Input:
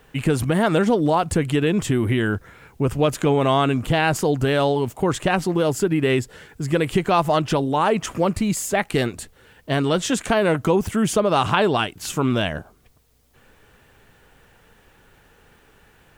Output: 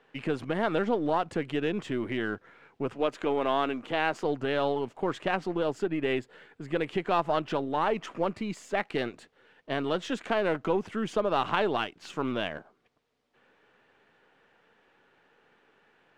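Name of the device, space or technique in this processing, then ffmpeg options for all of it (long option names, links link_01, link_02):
crystal radio: -filter_complex "[0:a]asettb=1/sr,asplit=3[link_01][link_02][link_03];[link_01]atrim=end=2.954[link_04];[link_02]atrim=start=2.95:end=4.24,asetpts=PTS-STARTPTS,afade=type=in:duration=0.004:curve=qsin,afade=type=out:start_time=1.286:duration=0.004:curve=qsin,highpass=200[link_05];[link_03]atrim=start=4.236[link_06];[link_04][link_05]acrossfade=duration=0.004:curve1=hsin:curve2=qsin[link_07];[link_07][link_06]acrossfade=duration=0.004:curve1=qsin:curve2=hsin,highpass=250,lowpass=3400,aeval=exprs='if(lt(val(0),0),0.708*val(0),val(0))':channel_layout=same,asettb=1/sr,asplit=3[link_08][link_09][link_10];[link_08]atrim=end=5.844[link_11];[link_09]atrim=start=5.84:end=6.89,asetpts=PTS-STARTPTS,afade=type=in:duration=0.004:curve=qsin,afade=type=out:start_time=1.046:duration=0.004:curve=qsin,equalizer=frequency=5600:width=4.2:gain=-6[link_12];[link_10]atrim=start=6.886[link_13];[link_11][link_12]acrossfade=duration=0.004:curve1=hsin:curve2=qsin[link_14];[link_14][link_13]acrossfade=duration=0.004:curve1=qsin:curve2=hsin,volume=-6.5dB"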